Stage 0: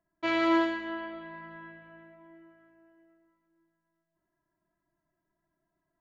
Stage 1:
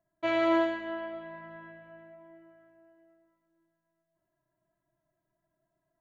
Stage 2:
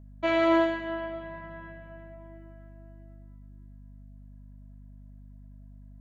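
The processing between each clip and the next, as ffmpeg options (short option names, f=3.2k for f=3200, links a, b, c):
-af "equalizer=f=125:t=o:w=0.33:g=10,equalizer=f=630:t=o:w=0.33:g=9,equalizer=f=5k:t=o:w=0.33:g=-8,volume=-2.5dB"
-af "aeval=exprs='val(0)+0.00316*(sin(2*PI*50*n/s)+sin(2*PI*2*50*n/s)/2+sin(2*PI*3*50*n/s)/3+sin(2*PI*4*50*n/s)/4+sin(2*PI*5*50*n/s)/5)':c=same,volume=3dB"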